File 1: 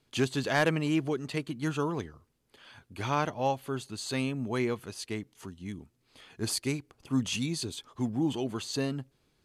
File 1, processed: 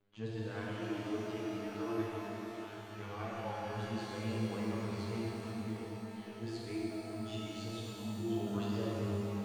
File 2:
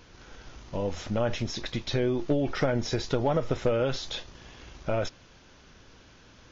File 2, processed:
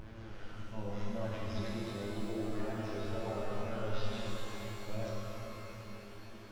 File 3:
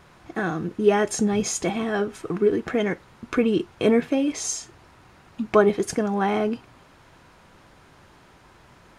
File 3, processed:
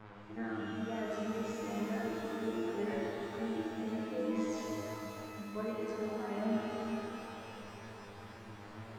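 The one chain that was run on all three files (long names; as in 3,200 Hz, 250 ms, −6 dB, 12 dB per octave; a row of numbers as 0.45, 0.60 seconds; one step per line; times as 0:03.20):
reverb reduction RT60 0.65 s
reversed playback
downward compressor 12 to 1, threshold −37 dBFS
reversed playback
phases set to zero 107 Hz
flanger 0.23 Hz, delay 9.2 ms, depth 3.5 ms, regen +52%
tape wow and flutter 110 cents
head-to-tape spacing loss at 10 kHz 26 dB
reverb with rising layers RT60 3.5 s, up +12 semitones, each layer −8 dB, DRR −5.5 dB
level +4.5 dB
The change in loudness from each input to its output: −8.0, −11.5, −15.0 LU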